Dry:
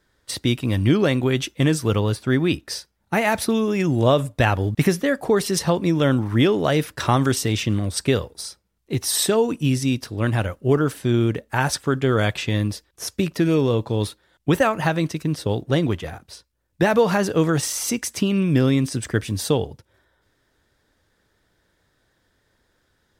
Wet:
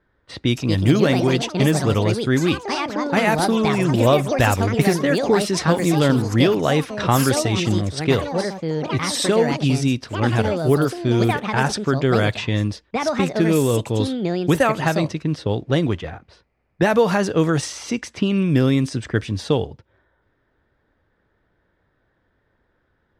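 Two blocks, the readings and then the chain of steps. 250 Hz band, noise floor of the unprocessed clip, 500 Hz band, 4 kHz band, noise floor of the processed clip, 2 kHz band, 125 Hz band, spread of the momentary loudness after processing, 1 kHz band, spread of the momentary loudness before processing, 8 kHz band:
+2.0 dB, -68 dBFS, +2.0 dB, +1.5 dB, -67 dBFS, +2.0 dB, +1.5 dB, 7 LU, +3.0 dB, 7 LU, -2.0 dB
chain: echoes that change speed 0.349 s, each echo +5 st, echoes 3, each echo -6 dB; low-pass opened by the level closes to 1900 Hz, open at -13 dBFS; gain +1 dB

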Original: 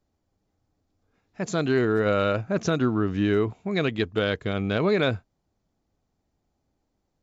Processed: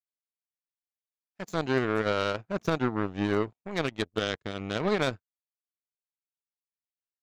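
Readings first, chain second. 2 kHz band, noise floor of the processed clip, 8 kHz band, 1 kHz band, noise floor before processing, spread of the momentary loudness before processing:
-3.5 dB, under -85 dBFS, n/a, -1.5 dB, -77 dBFS, 5 LU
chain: power-law curve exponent 2; mismatched tape noise reduction encoder only

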